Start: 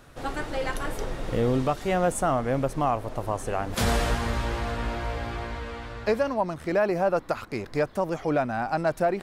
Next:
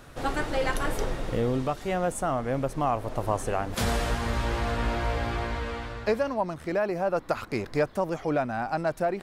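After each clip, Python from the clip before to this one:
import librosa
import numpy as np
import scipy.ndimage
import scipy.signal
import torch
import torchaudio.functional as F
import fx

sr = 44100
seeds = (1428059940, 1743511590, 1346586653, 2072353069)

y = fx.rider(x, sr, range_db=4, speed_s=0.5)
y = F.gain(torch.from_numpy(y), -1.0).numpy()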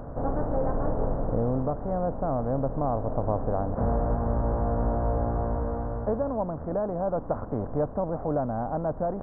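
y = fx.bin_compress(x, sr, power=0.6)
y = scipy.ndimage.gaussian_filter1d(y, 9.5, mode='constant')
y = fx.peak_eq(y, sr, hz=370.0, db=-9.0, octaves=0.36)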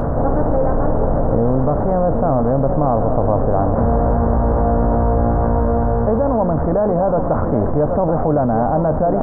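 y = fx.doubler(x, sr, ms=13.0, db=-13)
y = y + 10.0 ** (-11.0 / 20.0) * np.pad(y, (int(779 * sr / 1000.0), 0))[:len(y)]
y = fx.env_flatten(y, sr, amount_pct=70)
y = F.gain(torch.from_numpy(y), 8.0).numpy()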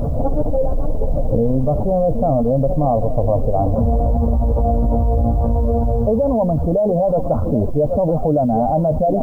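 y = fx.spec_expand(x, sr, power=1.9)
y = fx.quant_dither(y, sr, seeds[0], bits=10, dither='triangular')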